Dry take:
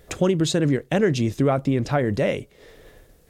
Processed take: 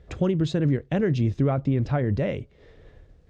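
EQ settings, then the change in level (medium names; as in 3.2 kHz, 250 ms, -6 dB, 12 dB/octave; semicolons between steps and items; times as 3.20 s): distance through air 140 m; peaking EQ 66 Hz +11.5 dB 2.6 oct; -6.0 dB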